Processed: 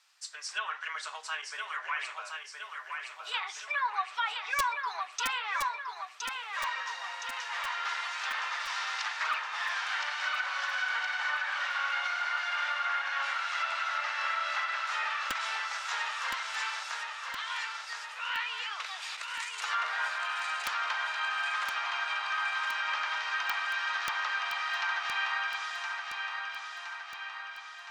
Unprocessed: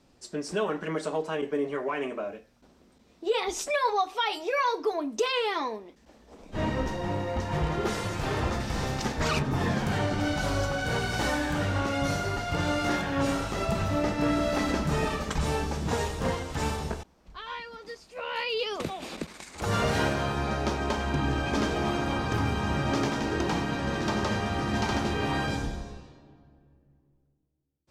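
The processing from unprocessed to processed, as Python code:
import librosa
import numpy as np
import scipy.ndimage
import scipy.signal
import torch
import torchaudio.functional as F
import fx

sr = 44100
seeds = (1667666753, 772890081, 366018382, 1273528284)

p1 = scipy.signal.sosfilt(scipy.signal.cheby2(4, 80, 200.0, 'highpass', fs=sr, output='sos'), x)
p2 = fx.env_lowpass_down(p1, sr, base_hz=1700.0, full_db=-30.0)
p3 = (np.mod(10.0 ** (23.5 / 20.0) * p2 + 1.0, 2.0) - 1.0) / 10.0 ** (23.5 / 20.0)
p4 = p3 + fx.echo_feedback(p3, sr, ms=1017, feedback_pct=59, wet_db=-5.0, dry=0)
y = p4 * 10.0 ** (3.5 / 20.0)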